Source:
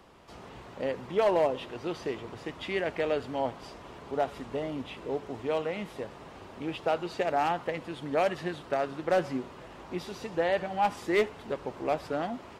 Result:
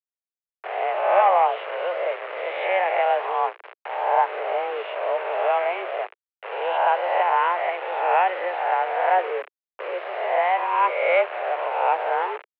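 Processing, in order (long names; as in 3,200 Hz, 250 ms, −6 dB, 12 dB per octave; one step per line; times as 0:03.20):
peak hold with a rise ahead of every peak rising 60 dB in 1.17 s
noise gate with hold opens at −30 dBFS
in parallel at −2 dB: speech leveller within 4 dB 2 s
on the sum: bit reduction 5 bits
single-sideband voice off tune +180 Hz 240–2,500 Hz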